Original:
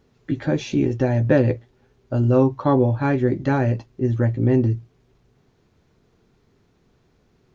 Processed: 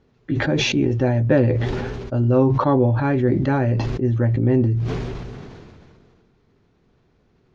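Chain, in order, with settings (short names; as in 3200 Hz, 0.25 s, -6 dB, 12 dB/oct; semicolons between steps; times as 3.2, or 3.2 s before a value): air absorption 100 m; sustainer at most 26 dB/s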